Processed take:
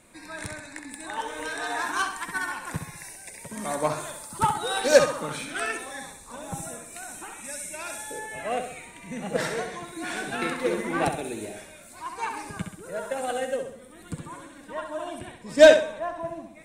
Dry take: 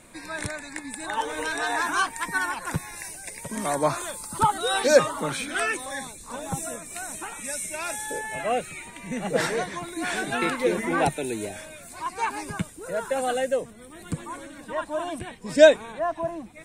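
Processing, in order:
flutter between parallel walls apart 11.3 metres, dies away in 0.63 s
harmonic generator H 5 −30 dB, 7 −21 dB, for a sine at −1.5 dBFS

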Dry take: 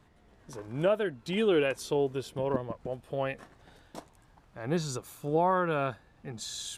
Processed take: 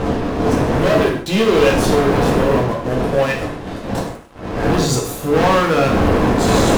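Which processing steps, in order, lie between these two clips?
wind on the microphone 470 Hz −31 dBFS
leveller curve on the samples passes 5
reverb whose tail is shaped and stops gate 190 ms falling, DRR −1 dB
level −2.5 dB

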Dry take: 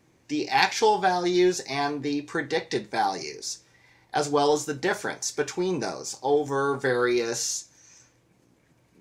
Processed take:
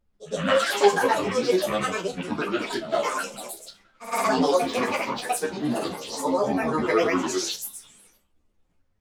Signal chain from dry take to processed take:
delay that plays each chunk backwards 125 ms, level −5.5 dB
granular cloud, pitch spread up and down by 12 semitones
high-pass filter 140 Hz 12 dB per octave
downward expander −52 dBFS
backwards echo 110 ms −13 dB
background noise brown −71 dBFS
on a send: flutter between parallel walls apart 5.1 metres, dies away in 0.21 s
on the sum: string-ensemble chorus
level +3.5 dB

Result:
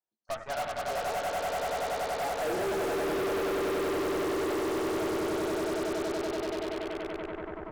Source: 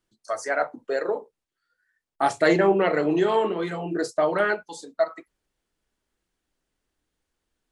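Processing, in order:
dynamic equaliser 1,200 Hz, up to +5 dB, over −34 dBFS, Q 1
band-pass filter sweep 780 Hz → 360 Hz, 0:01.07–0:03.11
echo that builds up and dies away 95 ms, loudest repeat 8, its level −3 dB
harmonic generator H 6 −11 dB, 7 −26 dB, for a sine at −24 dBFS
level −5 dB

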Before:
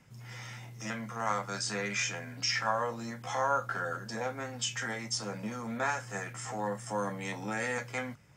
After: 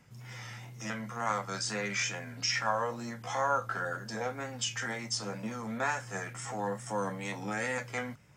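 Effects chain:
tape wow and flutter 49 cents

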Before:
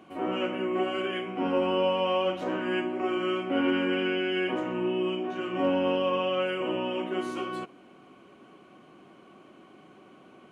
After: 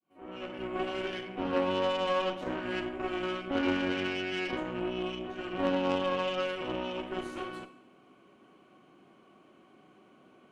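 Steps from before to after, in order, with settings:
fade in at the beginning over 0.79 s
four-comb reverb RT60 0.71 s, combs from 28 ms, DRR 9.5 dB
harmonic generator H 2 −18 dB, 3 −15 dB, 4 −22 dB, 6 −21 dB, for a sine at −14 dBFS

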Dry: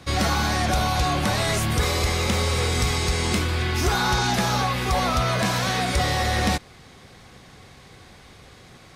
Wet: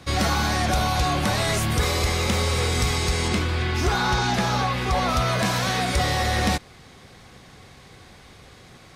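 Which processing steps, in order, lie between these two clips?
0:03.28–0:05.09: high-shelf EQ 8,500 Hz −11 dB

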